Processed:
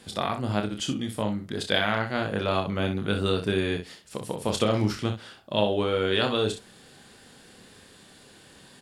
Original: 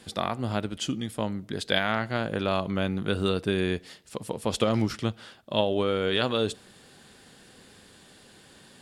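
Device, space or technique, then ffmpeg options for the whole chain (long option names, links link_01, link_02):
slapback doubling: -filter_complex "[0:a]asplit=3[link_01][link_02][link_03];[link_02]adelay=29,volume=-6dB[link_04];[link_03]adelay=63,volume=-9dB[link_05];[link_01][link_04][link_05]amix=inputs=3:normalize=0"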